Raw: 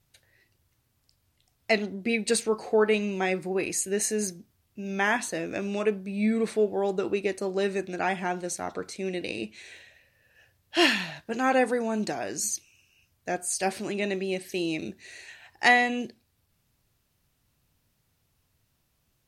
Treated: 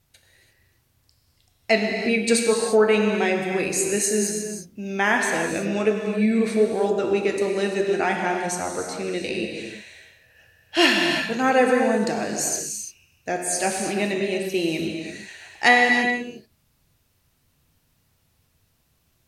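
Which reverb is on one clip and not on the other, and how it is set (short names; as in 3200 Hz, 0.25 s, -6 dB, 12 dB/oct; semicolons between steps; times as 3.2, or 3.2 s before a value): non-linear reverb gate 0.37 s flat, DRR 1.5 dB; gain +3.5 dB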